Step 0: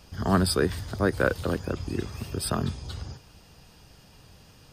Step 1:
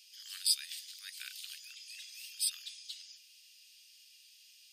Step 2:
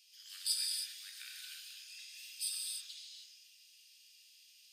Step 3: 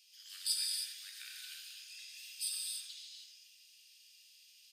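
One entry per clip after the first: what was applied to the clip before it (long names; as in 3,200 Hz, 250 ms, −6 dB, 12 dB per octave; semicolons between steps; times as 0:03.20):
Butterworth high-pass 2,500 Hz 36 dB per octave
reverb whose tail is shaped and stops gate 340 ms flat, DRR −2 dB; level −6.5 dB
single-tap delay 88 ms −11.5 dB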